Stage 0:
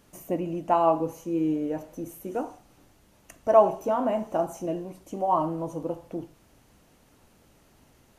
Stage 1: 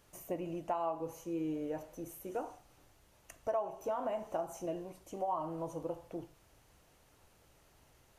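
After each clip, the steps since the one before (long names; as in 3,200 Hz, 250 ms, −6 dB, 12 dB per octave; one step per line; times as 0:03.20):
parametric band 230 Hz −9.5 dB 0.98 octaves
downward compressor 5 to 1, threshold −28 dBFS, peak gain reduction 14.5 dB
level −4.5 dB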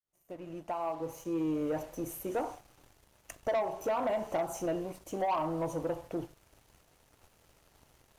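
fade in at the beginning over 1.73 s
leveller curve on the samples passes 2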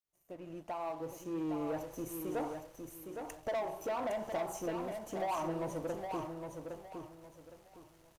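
in parallel at −5 dB: hard clipping −35.5 dBFS, distortion −8 dB
on the sum: repeating echo 812 ms, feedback 28%, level −6 dB
level −7 dB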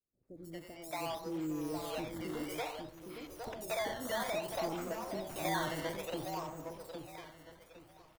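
sample-and-hold swept by an LFO 12×, swing 100% 0.59 Hz
three-band delay without the direct sound lows, highs, mids 140/230 ms, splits 450/6,000 Hz
level +1 dB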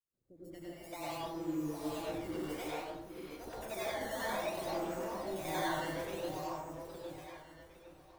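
dense smooth reverb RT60 0.62 s, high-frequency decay 0.55×, pre-delay 85 ms, DRR −6 dB
level −7.5 dB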